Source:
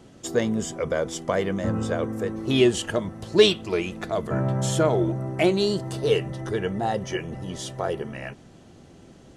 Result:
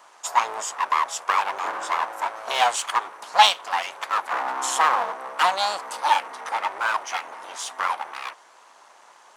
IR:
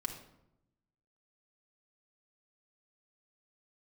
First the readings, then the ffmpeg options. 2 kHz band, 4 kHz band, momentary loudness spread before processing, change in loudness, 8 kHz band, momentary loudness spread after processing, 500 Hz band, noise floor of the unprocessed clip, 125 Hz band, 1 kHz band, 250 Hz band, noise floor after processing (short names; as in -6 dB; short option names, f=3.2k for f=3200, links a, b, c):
+6.5 dB, +3.5 dB, 11 LU, +1.0 dB, +4.5 dB, 10 LU, -11.5 dB, -50 dBFS, under -35 dB, +13.0 dB, -24.5 dB, -52 dBFS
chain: -filter_complex "[0:a]acrossover=split=3600[a][b];[a]aeval=exprs='abs(val(0))':c=same[c];[c][b]amix=inputs=2:normalize=0,highpass=f=1k:t=q:w=2.2,volume=4.5dB"